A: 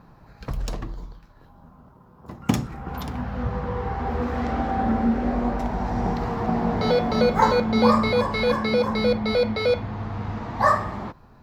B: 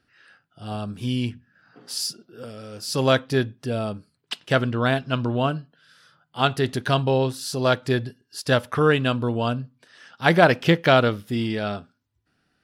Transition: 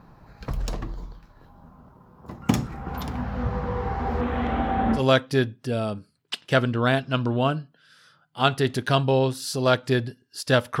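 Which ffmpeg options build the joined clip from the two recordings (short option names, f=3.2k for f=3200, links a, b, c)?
-filter_complex "[0:a]asettb=1/sr,asplit=3[a][b][c];[a]atrim=end=4.214[d];[b]atrim=start=4.21:end=5.03,asetpts=PTS-STARTPTS,afade=t=in:d=0.004:c=qsin,afade=t=out:st=0.816:d=0.004:c=qsin,highshelf=f=4k:t=q:w=3:g=-6.5[e];[c]atrim=start=5.026[f];[d][e]acrossfade=d=0.004:c1=hsin:c2=qsin[g];[g][f]acrossfade=d=0.004:c1=qsin:c2=hsin,apad=whole_dur=10.8,atrim=end=10.8,atrim=end=5.03,asetpts=PTS-STARTPTS[h];[1:a]atrim=start=2.92:end=8.79,asetpts=PTS-STARTPTS[i];[h][i]acrossfade=d=0.1:c1=tri:c2=tri"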